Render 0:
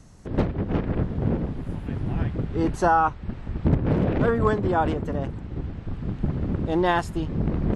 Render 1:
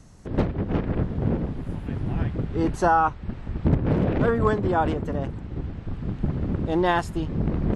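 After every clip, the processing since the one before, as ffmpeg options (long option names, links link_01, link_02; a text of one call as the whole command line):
ffmpeg -i in.wav -af anull out.wav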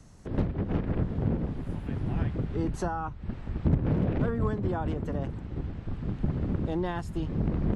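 ffmpeg -i in.wav -filter_complex "[0:a]acrossover=split=250[link_01][link_02];[link_02]acompressor=threshold=-30dB:ratio=4[link_03];[link_01][link_03]amix=inputs=2:normalize=0,volume=-3dB" out.wav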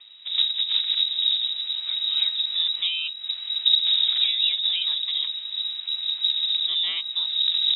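ffmpeg -i in.wav -af "lowpass=frequency=3300:width_type=q:width=0.5098,lowpass=frequency=3300:width_type=q:width=0.6013,lowpass=frequency=3300:width_type=q:width=0.9,lowpass=frequency=3300:width_type=q:width=2.563,afreqshift=-3900,volume=4.5dB" out.wav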